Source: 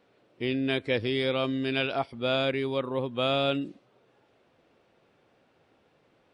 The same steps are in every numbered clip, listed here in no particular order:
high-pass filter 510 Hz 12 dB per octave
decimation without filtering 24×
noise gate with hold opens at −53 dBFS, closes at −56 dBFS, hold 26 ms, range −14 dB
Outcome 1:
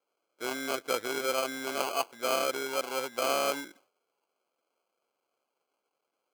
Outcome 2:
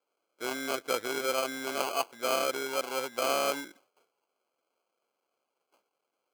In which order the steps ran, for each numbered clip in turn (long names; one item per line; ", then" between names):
decimation without filtering, then noise gate with hold, then high-pass filter
noise gate with hold, then decimation without filtering, then high-pass filter